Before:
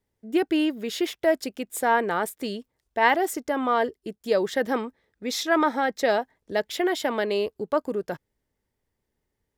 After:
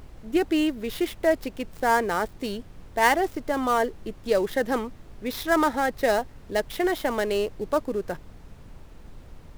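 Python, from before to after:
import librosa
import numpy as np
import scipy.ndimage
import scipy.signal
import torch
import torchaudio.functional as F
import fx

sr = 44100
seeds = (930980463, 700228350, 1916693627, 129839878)

y = fx.dead_time(x, sr, dead_ms=0.061)
y = fx.dmg_noise_colour(y, sr, seeds[0], colour='brown', level_db=-42.0)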